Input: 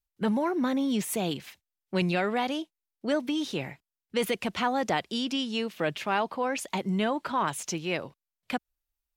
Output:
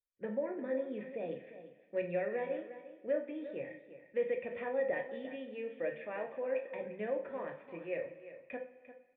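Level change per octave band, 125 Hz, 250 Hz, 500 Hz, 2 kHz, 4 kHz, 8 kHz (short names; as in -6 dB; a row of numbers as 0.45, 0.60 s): -18.0 dB, -15.5 dB, -3.5 dB, -11.0 dB, under -25 dB, under -40 dB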